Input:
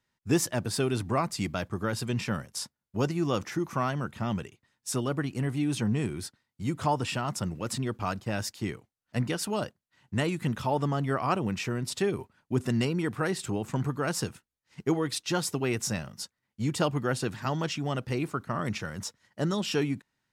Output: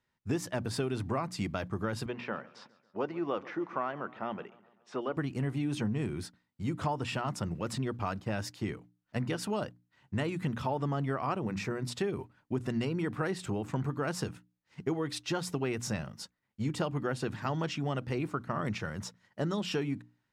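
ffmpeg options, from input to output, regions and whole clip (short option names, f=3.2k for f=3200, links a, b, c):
-filter_complex "[0:a]asettb=1/sr,asplit=3[a][b][c];[a]atrim=end=2.064[d];[b]atrim=start=2.06:end=5.17,asetpts=PTS-STARTPTS,afade=t=in:d=0.004:c=qsin,afade=t=out:st=3.106:d=0.004:c=qsin,highpass=370,lowpass=4k,aemphasis=mode=reproduction:type=75fm,aecho=1:1:138|276|414|552:0.0841|0.0471|0.0264|0.0148,atrim=end_sample=137151[e];[c]atrim=start=5.166[f];[d][e]acrossfade=d=0.004:c1=hsin:c2=qsin[g];[g][f]acrossfade=d=0.004:c1=qsin:c2=hsin,asettb=1/sr,asplit=3[h][i][j];[h]atrim=end=11.414[k];[i]atrim=start=11.41:end=11.87,asetpts=PTS-STARTPTS,afade=t=in:d=0.004:c=qsin,afade=t=out:st=0.456:d=0.004:c=qsin,equalizer=f=3k:w=4.7:g=-9,bandreject=f=50:t=h:w=6,bandreject=f=100:t=h:w=6,bandreject=f=150:t=h:w=6,bandreject=f=200:t=h:w=6,bandreject=f=250:t=h:w=6,bandreject=f=300:t=h:w=6[l];[j]atrim=start=11.866[m];[k][l]acrossfade=d=0.004:c1=hsin:c2=qsin[n];[n][m]acrossfade=d=0.004:c1=qsin:c2=hsin,highshelf=f=4.9k:g=-10.5,bandreject=f=60:t=h:w=6,bandreject=f=120:t=h:w=6,bandreject=f=180:t=h:w=6,bandreject=f=240:t=h:w=6,bandreject=f=300:t=h:w=6,acompressor=threshold=-28dB:ratio=6"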